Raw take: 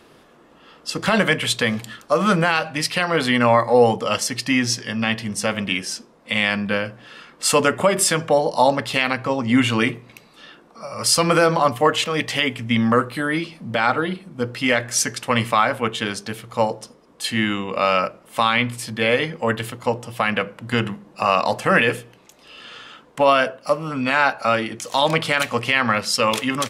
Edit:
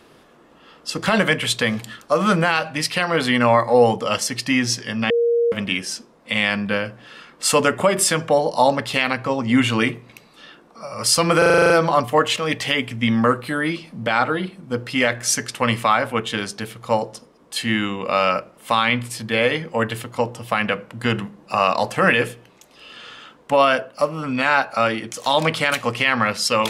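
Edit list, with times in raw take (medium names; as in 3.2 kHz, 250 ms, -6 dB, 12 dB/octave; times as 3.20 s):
5.10–5.52 s: bleep 470 Hz -14.5 dBFS
11.38 s: stutter 0.04 s, 9 plays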